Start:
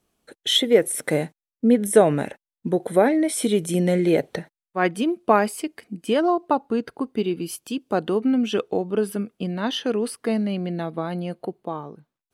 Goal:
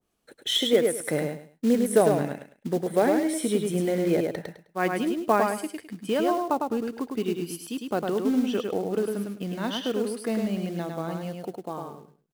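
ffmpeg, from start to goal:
-af "acrusher=bits=5:mode=log:mix=0:aa=0.000001,aecho=1:1:104|208|312:0.631|0.145|0.0334,adynamicequalizer=threshold=0.0224:dfrequency=1800:dqfactor=0.7:tfrequency=1800:tqfactor=0.7:attack=5:release=100:ratio=0.375:range=2:mode=cutabove:tftype=highshelf,volume=-5dB"

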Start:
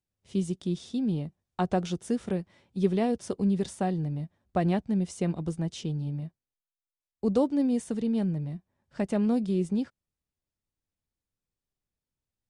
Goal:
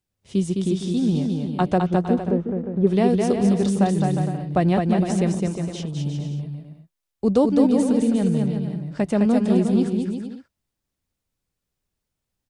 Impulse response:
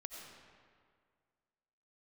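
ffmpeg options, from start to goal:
-filter_complex "[0:a]asettb=1/sr,asplit=3[a][b][c];[a]atrim=end=1.784[d];[b]atrim=start=1.78:end=2.87,asetpts=PTS-STARTPTS,afade=t=in:d=0.004:c=qsin,afade=t=out:st=1.086:d=0.004:c=qsin,lowpass=1k[e];[c]atrim=start=2.866[f];[d][e]acrossfade=d=0.004:c1=hsin:c2=qsin[g];[g][f]acrossfade=d=0.004:c1=qsin:c2=hsin,asplit=3[h][i][j];[h]afade=t=out:st=5.36:d=0.02[k];[i]acompressor=threshold=-36dB:ratio=6,afade=t=in:st=5.36:d=0.02,afade=t=out:st=5.96:d=0.02[l];[j]afade=t=in:st=5.96:d=0.02[m];[k][l][m]amix=inputs=3:normalize=0,asplit=2[n][o];[o]aecho=0:1:210|357|459.9|531.9|582.4:0.631|0.398|0.251|0.158|0.1[p];[n][p]amix=inputs=2:normalize=0,volume=6.5dB"

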